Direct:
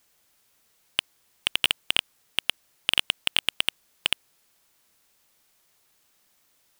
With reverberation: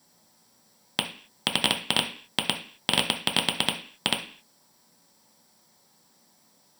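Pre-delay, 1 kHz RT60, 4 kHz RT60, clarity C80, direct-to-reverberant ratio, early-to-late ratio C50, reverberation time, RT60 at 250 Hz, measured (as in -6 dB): 3 ms, 0.45 s, no reading, 15.5 dB, 1.5 dB, 10.5 dB, 0.45 s, 0.55 s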